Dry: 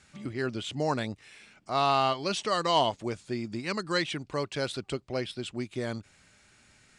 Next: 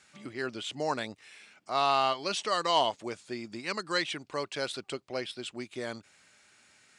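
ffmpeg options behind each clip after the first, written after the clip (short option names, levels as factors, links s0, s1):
-af "highpass=f=450:p=1"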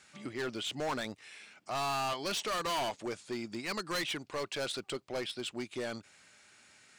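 -af "volume=39.8,asoftclip=hard,volume=0.0251,volume=1.12"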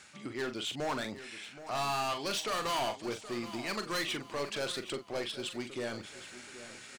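-filter_complex "[0:a]areverse,acompressor=mode=upward:threshold=0.01:ratio=2.5,areverse,asplit=2[s0][s1];[s1]adelay=42,volume=0.355[s2];[s0][s2]amix=inputs=2:normalize=0,aecho=1:1:774|1548|2322|3096:0.2|0.0778|0.0303|0.0118"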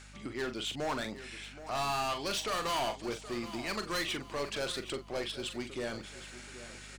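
-af "aeval=exprs='val(0)+0.00224*(sin(2*PI*50*n/s)+sin(2*PI*2*50*n/s)/2+sin(2*PI*3*50*n/s)/3+sin(2*PI*4*50*n/s)/4+sin(2*PI*5*50*n/s)/5)':c=same"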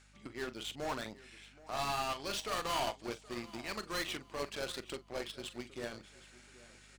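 -af "aeval=exprs='0.0531*(cos(1*acos(clip(val(0)/0.0531,-1,1)))-cos(1*PI/2))+0.0133*(cos(3*acos(clip(val(0)/0.0531,-1,1)))-cos(3*PI/2))':c=same,volume=1.12"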